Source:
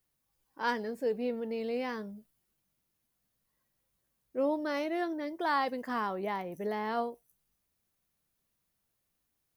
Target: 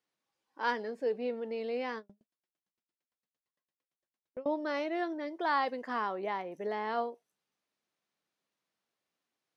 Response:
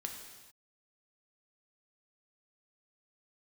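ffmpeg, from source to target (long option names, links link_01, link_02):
-filter_complex "[0:a]highpass=280,lowpass=5100,asettb=1/sr,asplit=3[link_01][link_02][link_03];[link_01]atrim=end=1.984[link_04];[link_02]atrim=start=1.98:end=4.46,asetpts=PTS-STARTPTS,afade=type=in:duration=0.004:curve=qsin,afade=type=out:start_time=2.476:duration=0.004:curve=qsin,aeval=exprs='val(0)*pow(10,-39*if(lt(mod(8.8*n/s,1),2*abs(8.8)/1000),1-mod(8.8*n/s,1)/(2*abs(8.8)/1000),(mod(8.8*n/s,1)-2*abs(8.8)/1000)/(1-2*abs(8.8)/1000))/20)':channel_layout=same[link_05];[link_03]atrim=start=4.456[link_06];[link_04][link_05]acrossfade=duration=0.004:curve1=hsin:curve2=qsin[link_07];[link_07][link_06]acrossfade=duration=0.004:curve1=qsin:curve2=hsin"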